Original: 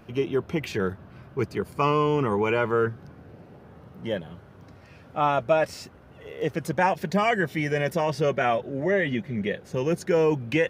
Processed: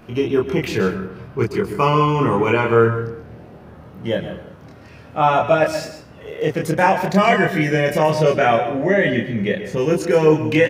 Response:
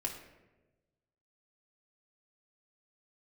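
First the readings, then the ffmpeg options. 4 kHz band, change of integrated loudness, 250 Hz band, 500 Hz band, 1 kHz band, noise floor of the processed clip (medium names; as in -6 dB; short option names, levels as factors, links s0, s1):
+7.5 dB, +7.5 dB, +8.0 dB, +7.5 dB, +8.0 dB, -42 dBFS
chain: -filter_complex "[0:a]asplit=2[s0][s1];[s1]adelay=26,volume=0.794[s2];[s0][s2]amix=inputs=2:normalize=0,asplit=2[s3][s4];[1:a]atrim=start_sample=2205,afade=t=out:st=0.3:d=0.01,atrim=end_sample=13671,adelay=130[s5];[s4][s5]afir=irnorm=-1:irlink=0,volume=0.299[s6];[s3][s6]amix=inputs=2:normalize=0,volume=1.78"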